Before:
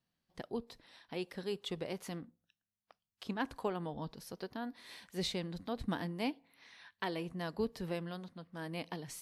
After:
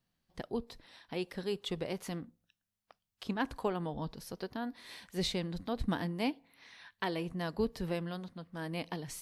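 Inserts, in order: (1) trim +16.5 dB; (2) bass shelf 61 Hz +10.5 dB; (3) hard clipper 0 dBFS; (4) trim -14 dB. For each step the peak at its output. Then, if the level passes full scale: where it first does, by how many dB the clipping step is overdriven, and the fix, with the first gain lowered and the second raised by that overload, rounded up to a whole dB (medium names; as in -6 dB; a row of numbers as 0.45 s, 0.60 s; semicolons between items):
-5.5 dBFS, -5.5 dBFS, -5.5 dBFS, -19.5 dBFS; nothing clips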